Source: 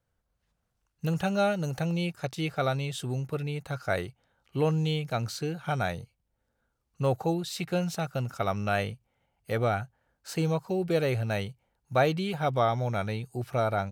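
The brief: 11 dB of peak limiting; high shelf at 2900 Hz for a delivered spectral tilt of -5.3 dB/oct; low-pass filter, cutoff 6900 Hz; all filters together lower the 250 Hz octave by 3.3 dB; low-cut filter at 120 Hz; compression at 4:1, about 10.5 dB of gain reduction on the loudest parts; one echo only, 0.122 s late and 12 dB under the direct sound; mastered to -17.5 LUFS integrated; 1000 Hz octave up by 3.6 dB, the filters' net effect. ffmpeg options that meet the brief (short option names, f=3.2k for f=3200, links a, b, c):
-af "highpass=120,lowpass=6.9k,equalizer=f=250:t=o:g=-5,equalizer=f=1k:t=o:g=6.5,highshelf=f=2.9k:g=-4.5,acompressor=threshold=-30dB:ratio=4,alimiter=level_in=2.5dB:limit=-24dB:level=0:latency=1,volume=-2.5dB,aecho=1:1:122:0.251,volume=20dB"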